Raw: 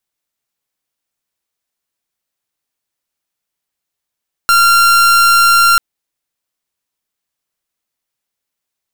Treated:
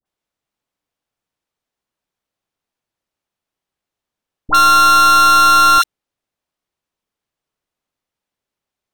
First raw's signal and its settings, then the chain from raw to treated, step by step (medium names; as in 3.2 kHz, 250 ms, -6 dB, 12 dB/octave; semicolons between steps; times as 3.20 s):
pulse 1.38 kHz, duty 43% -8.5 dBFS 1.29 s
low-pass 3.2 kHz 6 dB/octave; in parallel at -7 dB: sample-and-hold 18×; on the sum: phase dispersion highs, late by 57 ms, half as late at 1 kHz